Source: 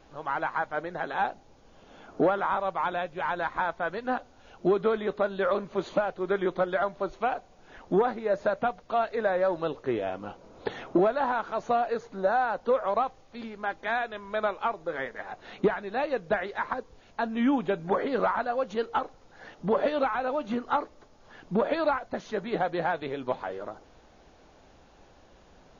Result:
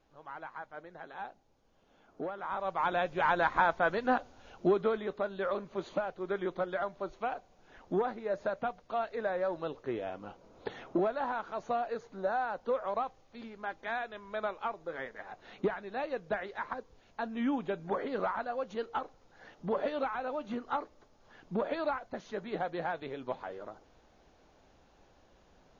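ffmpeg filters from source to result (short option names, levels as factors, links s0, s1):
-af "volume=1.26,afade=t=in:st=2.37:d=0.2:silence=0.446684,afade=t=in:st=2.57:d=0.59:silence=0.334965,afade=t=out:st=3.87:d=1.23:silence=0.354813"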